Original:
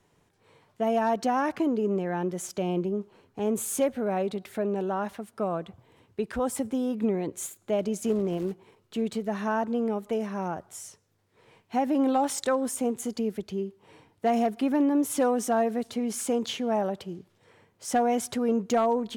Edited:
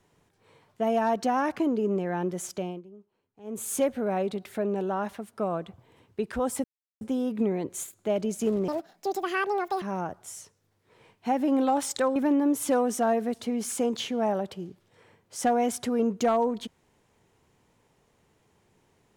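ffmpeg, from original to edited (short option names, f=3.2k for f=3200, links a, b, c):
-filter_complex "[0:a]asplit=7[a][b][c][d][e][f][g];[a]atrim=end=2.82,asetpts=PTS-STARTPTS,afade=t=out:st=2.52:d=0.3:silence=0.105925[h];[b]atrim=start=2.82:end=3.43,asetpts=PTS-STARTPTS,volume=-19.5dB[i];[c]atrim=start=3.43:end=6.64,asetpts=PTS-STARTPTS,afade=t=in:d=0.3:silence=0.105925,afade=t=out:st=3.206:d=0.004:c=hsin,apad=pad_dur=0.37[j];[d]atrim=start=6.64:end=8.314,asetpts=PTS-STARTPTS,afade=t=in:d=0.004:c=hsin[k];[e]atrim=start=8.31:end=10.29,asetpts=PTS-STARTPTS,asetrate=76734,aresample=44100[l];[f]atrim=start=10.286:end=12.632[m];[g]atrim=start=14.648[n];[h][i][j][k]concat=n=4:v=0:a=1[o];[o][l]acrossfade=d=0.004:c1=hsin:c2=hsin[p];[p][m]acrossfade=d=0.004:c1=hsin:c2=hsin[q];[q][n]acrossfade=d=0.004:c1=hsin:c2=hsin"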